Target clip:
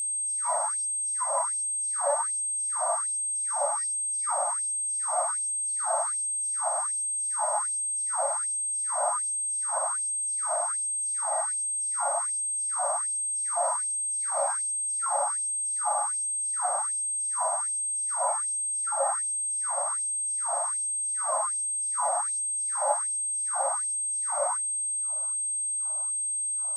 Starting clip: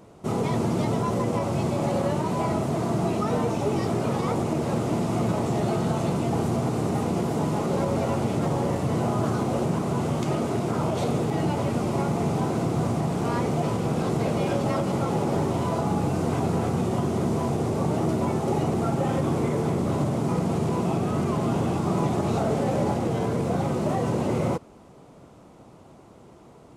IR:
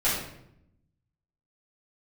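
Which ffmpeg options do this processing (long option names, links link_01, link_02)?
-filter_complex "[0:a]asuperstop=centerf=2900:order=4:qfactor=0.77,aemphasis=mode=reproduction:type=bsi,asplit=2[link_01][link_02];[1:a]atrim=start_sample=2205,lowpass=frequency=6300:width=0.5412,lowpass=frequency=6300:width=1.3066[link_03];[link_02][link_03]afir=irnorm=-1:irlink=0,volume=-18dB[link_04];[link_01][link_04]amix=inputs=2:normalize=0,aeval=exprs='val(0)+0.0355*sin(2*PI*8400*n/s)':channel_layout=same,afftfilt=real='re*gte(b*sr/1024,520*pow(7700/520,0.5+0.5*sin(2*PI*1.3*pts/sr)))':imag='im*gte(b*sr/1024,520*pow(7700/520,0.5+0.5*sin(2*PI*1.3*pts/sr)))':win_size=1024:overlap=0.75,volume=2dB"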